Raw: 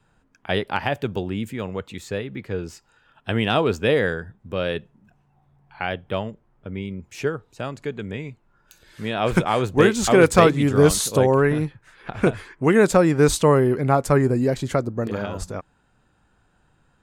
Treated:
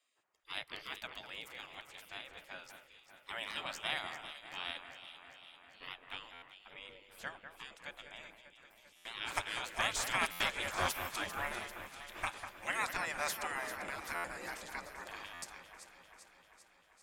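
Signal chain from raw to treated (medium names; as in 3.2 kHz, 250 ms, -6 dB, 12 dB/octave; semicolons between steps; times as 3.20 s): spectral gate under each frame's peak -20 dB weak; echo whose repeats swap between lows and highs 197 ms, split 2.3 kHz, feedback 79%, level -8.5 dB; buffer glitch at 6.33/8.96/10.31/14.15/15.33 s, samples 512, times 7; trim -5.5 dB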